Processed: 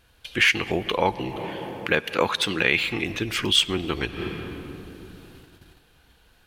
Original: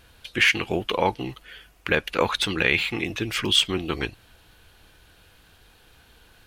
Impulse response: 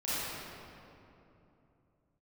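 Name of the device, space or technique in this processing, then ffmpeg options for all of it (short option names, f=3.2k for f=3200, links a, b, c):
ducked reverb: -filter_complex "[0:a]asplit=3[a][b][c];[1:a]atrim=start_sample=2205[d];[b][d]afir=irnorm=-1:irlink=0[e];[c]apad=whole_len=284973[f];[e][f]sidechaincompress=threshold=-44dB:ratio=5:attack=27:release=118,volume=-8.5dB[g];[a][g]amix=inputs=2:normalize=0,agate=range=-8dB:threshold=-47dB:ratio=16:detection=peak,asettb=1/sr,asplit=3[h][i][j];[h]atrim=end=1.364[k];[i]atrim=start=1.36:end=2.83,asetpts=PTS-STARTPTS,afade=t=in:d=0.004:c=qsin,afade=t=out:st=1.466:d=0.004:c=qsin,highpass=110[l];[j]atrim=start=2.826[m];[k][l]acrossfade=d=0.004:c1=hsin:c2=qsin[n];[n][m]acrossfade=d=0.004:c1=qsin:c2=hsin"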